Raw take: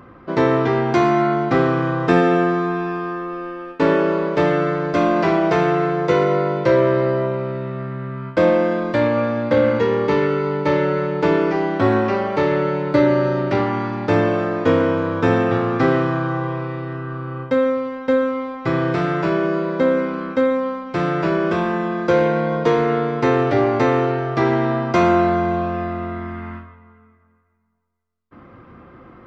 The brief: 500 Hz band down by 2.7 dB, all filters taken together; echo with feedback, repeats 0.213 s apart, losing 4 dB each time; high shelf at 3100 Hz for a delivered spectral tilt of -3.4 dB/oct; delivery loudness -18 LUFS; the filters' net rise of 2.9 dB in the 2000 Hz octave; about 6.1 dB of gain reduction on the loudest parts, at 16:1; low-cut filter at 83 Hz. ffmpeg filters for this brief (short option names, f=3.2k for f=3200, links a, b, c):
-af "highpass=83,equalizer=f=500:t=o:g=-3.5,equalizer=f=2k:t=o:g=5.5,highshelf=f=3.1k:g=-5,acompressor=threshold=-18dB:ratio=16,aecho=1:1:213|426|639|852|1065|1278|1491|1704|1917:0.631|0.398|0.25|0.158|0.0994|0.0626|0.0394|0.0249|0.0157,volume=4dB"